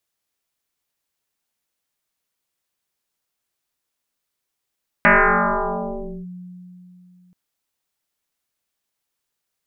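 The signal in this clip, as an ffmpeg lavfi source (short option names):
-f lavfi -i "aevalsrc='0.376*pow(10,-3*t/3.22)*sin(2*PI*180*t+10*clip(1-t/1.21,0,1)*sin(2*PI*1.13*180*t))':d=2.28:s=44100"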